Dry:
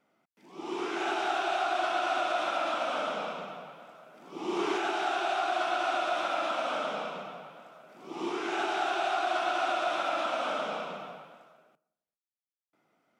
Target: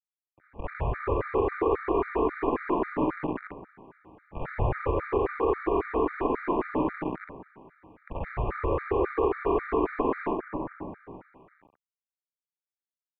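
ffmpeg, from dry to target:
-filter_complex "[0:a]lowshelf=f=460:g=11.5,asettb=1/sr,asplit=3[a][b][c];[a]atrim=end=10.334[d];[b]atrim=start=10.33:end=11.1,asetpts=PTS-STARTPTS,afade=t=in:d=0.004:c=qsin,afade=t=out:st=0.766:d=0.004:c=qsin,aeval=exprs='max(val(0),0)':c=same[e];[c]atrim=start=11.096[f];[d][e]acrossfade=d=0.004:c1=hsin:c2=qsin[g];[g][f]acrossfade=d=0.004:c1=qsin:c2=hsin,aecho=1:1:50|66:0.447|0.531,adynamicsmooth=sensitivity=0.5:basefreq=1.2k,acrusher=bits=6:dc=4:mix=0:aa=0.000001,equalizer=f=99:w=0.32:g=-10,highpass=f=320:t=q:w=0.5412,highpass=f=320:t=q:w=1.307,lowpass=f=2.4k:t=q:w=0.5176,lowpass=f=2.4k:t=q:w=0.7071,lowpass=f=2.4k:t=q:w=1.932,afreqshift=-310,afftfilt=real='re*gt(sin(2*PI*3.7*pts/sr)*(1-2*mod(floor(b*sr/1024/1200),2)),0)':imag='im*gt(sin(2*PI*3.7*pts/sr)*(1-2*mod(floor(b*sr/1024/1200),2)),0)':win_size=1024:overlap=0.75,volume=5dB"

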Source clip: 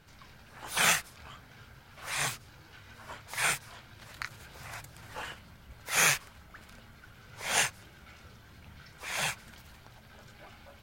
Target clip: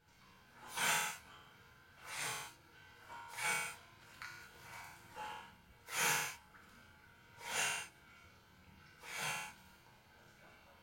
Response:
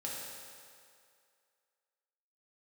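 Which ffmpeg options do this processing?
-filter_complex "[1:a]atrim=start_sample=2205,afade=t=out:st=0.42:d=0.01,atrim=end_sample=18963,asetrate=74970,aresample=44100[a];[0:a][a]afir=irnorm=-1:irlink=0,volume=-5dB"

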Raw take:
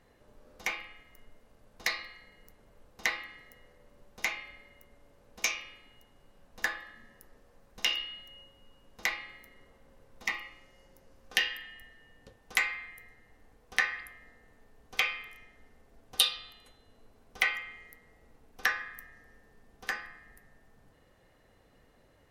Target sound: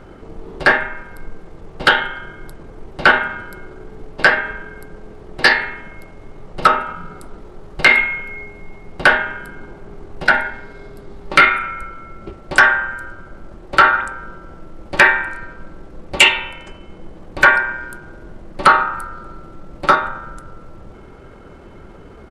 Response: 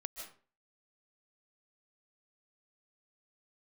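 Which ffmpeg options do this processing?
-af "lowpass=f=2.2k:p=1,asetrate=33038,aresample=44100,atempo=1.33484,apsyclip=27dB,volume=-2dB"

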